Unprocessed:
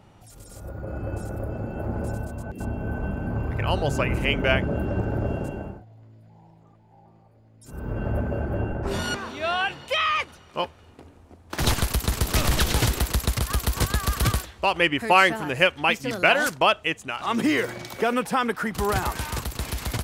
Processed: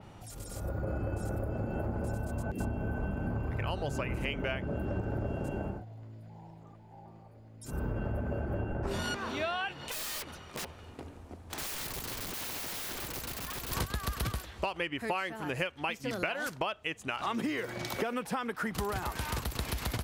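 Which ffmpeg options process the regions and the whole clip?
-filter_complex "[0:a]asettb=1/sr,asplit=3[a][b][c];[a]atrim=end=9.724[d];[b]atrim=start=9.72:end=13.72,asetpts=PTS-STARTPTS,afade=t=in:d=0.004:c=qsin,afade=t=out:st=3.996:d=0.004:c=qsin,aeval=exprs='(mod(18.8*val(0)+1,2)-1)/18.8':c=same,acompressor=threshold=-37dB:ratio=12:attack=3.2:release=140:knee=1:detection=peak[e];[c]atrim=start=13.716[f];[d][e]acrossfade=d=0.004:c1=hsin:c2=qsin[g];[g][f]acrossfade=d=0.004:c1=qsin:c2=hsin,acompressor=threshold=-32dB:ratio=12,adynamicequalizer=threshold=0.00178:dfrequency=8000:dqfactor=1.1:tfrequency=8000:tqfactor=1.1:attack=5:release=100:ratio=0.375:range=2:mode=cutabove:tftype=bell,volume=2dB"

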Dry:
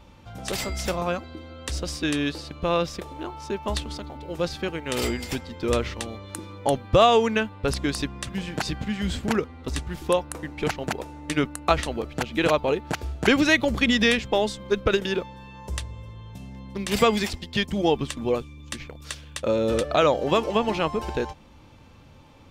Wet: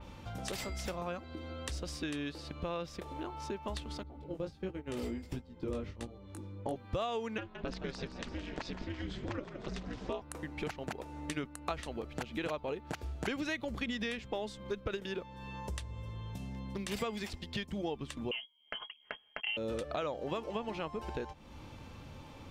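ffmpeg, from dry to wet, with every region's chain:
-filter_complex "[0:a]asettb=1/sr,asplit=3[a][b][c];[a]atrim=end=4.034[d];[b]atrim=start=4.03:end=6.76,asetpts=PTS-STARTPTS,afade=t=in:d=0.004:c=qsin,afade=t=out:st=2.726:d=0.004:c=qsin,agate=range=-10dB:threshold=-33dB:ratio=16:release=100:detection=peak,tiltshelf=f=660:g=6.5,flanger=delay=15.5:depth=5.4:speed=1.4[e];[c]atrim=start=6.756[f];[d][e]acrossfade=d=0.004:c1=hsin:c2=qsin[g];[g][f]acrossfade=d=0.004:c1=qsin:c2=hsin,asettb=1/sr,asplit=3[h][i][j];[h]atrim=end=7.384[k];[i]atrim=start=7.38:end=10.22,asetpts=PTS-STARTPTS,afade=t=in:d=0.004:c=qsin,afade=t=out:st=2.836:d=0.004:c=qsin,lowpass=f=6.4k:w=0.5412,lowpass=f=6.4k:w=1.3066,aeval=exprs='val(0)*sin(2*PI*120*n/s)':c=same,asplit=7[l][m][n][o][p][q][r];[m]adelay=168,afreqshift=64,volume=-12.5dB[s];[n]adelay=336,afreqshift=128,volume=-17.5dB[t];[o]adelay=504,afreqshift=192,volume=-22.6dB[u];[p]adelay=672,afreqshift=256,volume=-27.6dB[v];[q]adelay=840,afreqshift=320,volume=-32.6dB[w];[r]adelay=1008,afreqshift=384,volume=-37.7dB[x];[l][s][t][u][v][w][x]amix=inputs=7:normalize=0,atrim=end_sample=125244[y];[j]atrim=start=10.216[z];[k][y]acrossfade=d=0.004:c1=hsin:c2=qsin[aa];[aa][z]acrossfade=d=0.004:c1=qsin:c2=hsin,asettb=1/sr,asplit=3[ab][ac][ad];[ab]atrim=end=18.314[ae];[ac]atrim=start=18.31:end=19.57,asetpts=PTS-STARTPTS,afade=t=in:d=0.004:c=qsin,afade=t=out:st=1.256:d=0.004:c=qsin,agate=range=-22dB:threshold=-38dB:ratio=16:release=100:detection=peak,aecho=1:1:4.9:0.62,atrim=end_sample=55566,lowpass=f=2.8k:t=q:w=0.5098,lowpass=f=2.8k:t=q:w=0.6013,lowpass=f=2.8k:t=q:w=0.9,lowpass=f=2.8k:t=q:w=2.563,afreqshift=-3300[af];[ad]atrim=start=19.566[ag];[ae][af]acrossfade=d=0.004:c1=hsin:c2=qsin[ah];[ah][ag]acrossfade=d=0.004:c1=qsin:c2=hsin,acompressor=threshold=-41dB:ratio=3,adynamicequalizer=threshold=0.00158:dfrequency=3900:dqfactor=0.7:tfrequency=3900:tqfactor=0.7:attack=5:release=100:ratio=0.375:range=2:mode=cutabove:tftype=highshelf,volume=1dB"

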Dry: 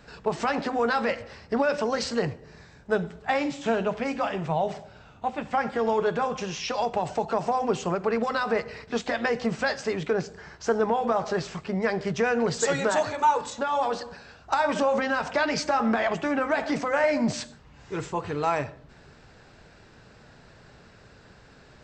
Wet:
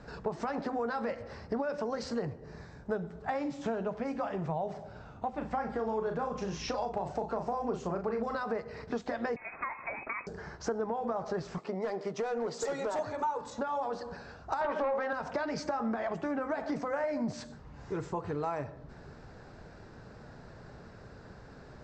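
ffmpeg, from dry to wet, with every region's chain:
-filter_complex "[0:a]asettb=1/sr,asplit=3[a][b][c];[a]atrim=end=5.324[d];[b]atrim=start=5.32:end=8.36,asetpts=PTS-STARTPTS,afade=t=in:d=0.004:c=qsin,afade=t=out:st=3.036:d=0.004:c=qsin,aeval=exprs='val(0)+0.00398*(sin(2*PI*60*n/s)+sin(2*PI*2*60*n/s)/2+sin(2*PI*3*60*n/s)/3+sin(2*PI*4*60*n/s)/4+sin(2*PI*5*60*n/s)/5)':c=same,asplit=2[e][f];[f]adelay=37,volume=-6dB[g];[e][g]amix=inputs=2:normalize=0,atrim=end_sample=134064[h];[c]atrim=start=8.356[i];[d][h]acrossfade=d=0.004:c1=hsin:c2=qsin[j];[j][i]acrossfade=d=0.004:c1=qsin:c2=hsin,asettb=1/sr,asplit=3[k][l][m];[k]atrim=end=9.364[n];[l]atrim=start=9.36:end=10.27,asetpts=PTS-STARTPTS,afade=t=in:d=0.004:c=qsin,afade=t=out:st=0.906:d=0.004:c=qsin,acrossover=split=260|570[o][p][q];[o]acompressor=threshold=-42dB:ratio=4[r];[p]acompressor=threshold=-39dB:ratio=4[s];[q]acompressor=threshold=-28dB:ratio=4[t];[r][s][t]amix=inputs=3:normalize=0,lowpass=f=2.3k:t=q:w=0.5098,lowpass=f=2.3k:t=q:w=0.6013,lowpass=f=2.3k:t=q:w=0.9,lowpass=f=2.3k:t=q:w=2.563,afreqshift=-2700[u];[m]atrim=start=10.266[v];[n][u]acrossfade=d=0.004:c1=hsin:c2=qsin[w];[w][v]acrossfade=d=0.004:c1=qsin:c2=hsin,asettb=1/sr,asplit=3[x][y][z];[x]atrim=end=11.584[aa];[y]atrim=start=11.58:end=12.99,asetpts=PTS-STARTPTS,afade=t=in:d=0.004:c=qsin,afade=t=out:st=1.406:d=0.004:c=qsin,highpass=310,equalizer=f=1.6k:t=o:w=0.2:g=-9,volume=22.5dB,asoftclip=hard,volume=-22.5dB[ab];[z]atrim=start=12.986[ac];[aa][ab]acrossfade=d=0.004:c1=hsin:c2=qsin[ad];[ad][ac]acrossfade=d=0.004:c1=qsin:c2=hsin,asettb=1/sr,asplit=3[ae][af][ag];[ae]atrim=end=14.614[ah];[af]atrim=start=14.61:end=15.13,asetpts=PTS-STARTPTS,afade=t=in:d=0.004:c=qsin,afade=t=out:st=0.516:d=0.004:c=qsin,highpass=520,lowpass=2.4k,aeval=exprs='0.188*sin(PI/2*1.78*val(0)/0.188)':c=same,asplit=2[ai][aj];[aj]adelay=17,volume=-14dB[ak];[ai][ak]amix=inputs=2:normalize=0,atrim=end_sample=22932[al];[ag]atrim=start=15.126[am];[ah][al]acrossfade=d=0.004:c1=hsin:c2=qsin[an];[an][am]acrossfade=d=0.004:c1=qsin:c2=hsin,lowpass=5.2k,equalizer=f=2.9k:w=0.98:g=-11.5,acompressor=threshold=-37dB:ratio=3,volume=3dB"

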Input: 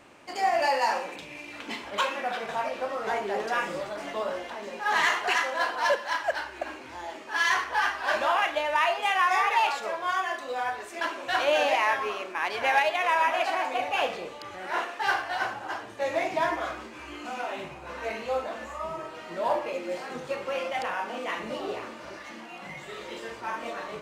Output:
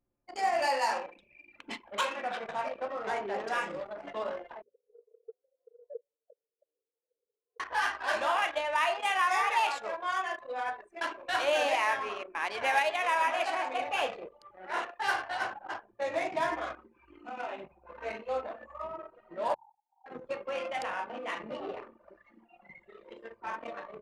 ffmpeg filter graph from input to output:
-filter_complex "[0:a]asettb=1/sr,asplit=3[a][b][c];[a]atrim=end=4.624[d];[b]atrim=start=4.62:end=7.6,asetpts=PTS-STARTPTS,afade=t=in:d=0.004:c=qsin,afade=t=out:st=2.976:d=0.004:c=qsin,asuperpass=centerf=470:order=4:qfactor=7.8,aecho=1:1:6.7:0.83,atrim=end_sample=131418[e];[c]atrim=start=7.596[f];[d][e]acrossfade=d=0.004:c1=hsin:c2=qsin[g];[g][f]acrossfade=d=0.004:c1=qsin:c2=hsin,asettb=1/sr,asplit=3[h][i][j];[h]atrim=end=19.544[k];[i]atrim=start=19.54:end=20.06,asetpts=PTS-STARTPTS,afade=t=in:d=0.004:c=qsin,afade=t=out:st=0.516:d=0.004:c=qsin,asuperpass=centerf=860:order=8:qfactor=4.7,acompressor=threshold=-40dB:ratio=16:attack=3.2:release=140:knee=1:detection=peak[l];[j]atrim=start=20.056[m];[k][l]acrossfade=d=0.004:c1=hsin:c2=qsin[n];[n][m]acrossfade=d=0.004:c1=qsin:c2=hsin,bandreject=f=60:t=h:w=6,bandreject=f=120:t=h:w=6,bandreject=f=180:t=h:w=6,bandreject=f=240:t=h:w=6,bandreject=f=300:t=h:w=6,bandreject=f=360:t=h:w=6,bandreject=f=420:t=h:w=6,anlmdn=6.31,equalizer=f=9.5k:t=o:w=0.92:g=8,volume=-4dB"

